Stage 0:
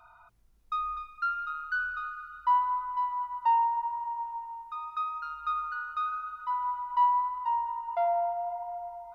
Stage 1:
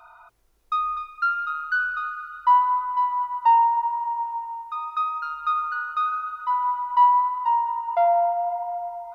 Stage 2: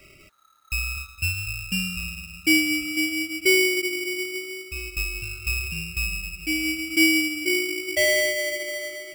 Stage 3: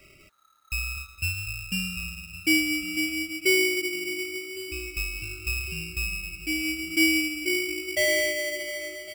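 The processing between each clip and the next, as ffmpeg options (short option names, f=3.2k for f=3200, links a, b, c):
-af "lowshelf=f=280:t=q:w=1.5:g=-8.5,volume=7dB"
-af "lowshelf=f=350:g=7.5,aeval=exprs='val(0)*sgn(sin(2*PI*1300*n/s))':c=same,volume=-3dB"
-af "aecho=1:1:1109|2218|3327:0.15|0.0598|0.0239,volume=-3dB"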